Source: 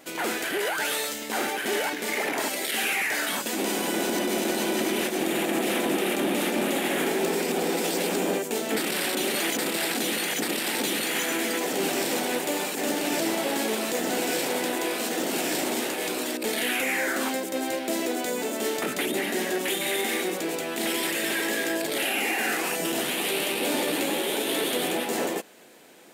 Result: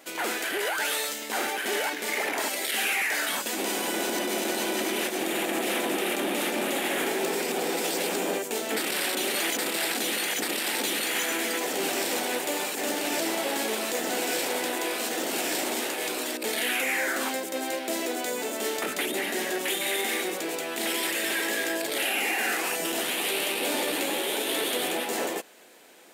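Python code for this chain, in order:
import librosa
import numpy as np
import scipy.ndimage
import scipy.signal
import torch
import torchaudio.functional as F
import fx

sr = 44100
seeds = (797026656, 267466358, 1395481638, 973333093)

y = fx.highpass(x, sr, hz=390.0, slope=6)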